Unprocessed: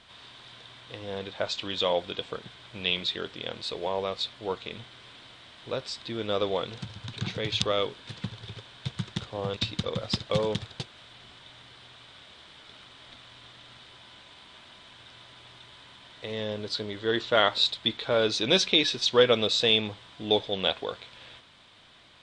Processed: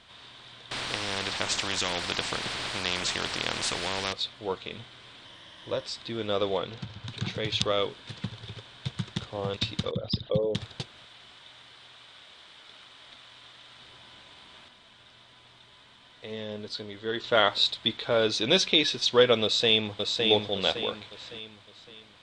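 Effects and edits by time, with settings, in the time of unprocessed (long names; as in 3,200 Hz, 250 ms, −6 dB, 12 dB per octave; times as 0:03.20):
0:00.71–0:04.13: every bin compressed towards the loudest bin 4 to 1
0:05.25–0:05.86: EQ curve with evenly spaced ripples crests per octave 1.2, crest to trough 7 dB
0:06.58–0:07.06: high-frequency loss of the air 69 metres
0:09.91–0:10.55: spectral envelope exaggerated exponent 2
0:11.05–0:13.79: low-shelf EQ 360 Hz −8.5 dB
0:14.68–0:17.24: flanger 1.4 Hz, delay 3.9 ms, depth 1.1 ms, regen +78%
0:19.43–0:20.25: delay throw 560 ms, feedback 40%, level −3.5 dB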